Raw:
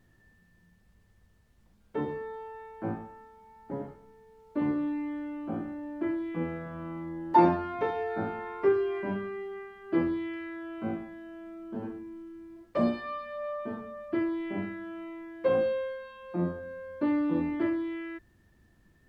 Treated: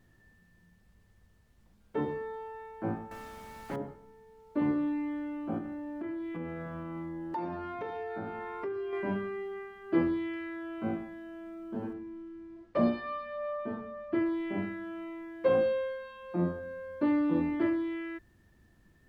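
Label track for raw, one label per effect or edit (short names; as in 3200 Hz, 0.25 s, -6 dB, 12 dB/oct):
3.110000	3.760000	spectral compressor 2:1
5.580000	8.930000	compressor 4:1, threshold -35 dBFS
11.930000	14.260000	air absorption 98 m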